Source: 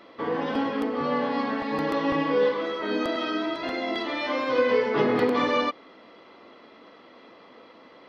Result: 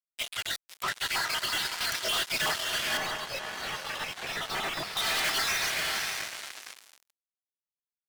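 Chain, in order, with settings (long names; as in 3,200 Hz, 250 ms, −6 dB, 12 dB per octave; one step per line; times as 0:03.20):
time-frequency cells dropped at random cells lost 61%
dynamic equaliser 4,200 Hz, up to −4 dB, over −58 dBFS, Q 5.4
gate on every frequency bin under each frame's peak −25 dB weak
feedback delay with all-pass diffusion 566 ms, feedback 47%, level −6.5 dB
fuzz pedal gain 48 dB, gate −57 dBFS
high-pass filter 890 Hz 6 dB per octave
gain into a clipping stage and back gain 23.5 dB
0:02.97–0:04.97: high-shelf EQ 2,500 Hz −10 dB
level −3 dB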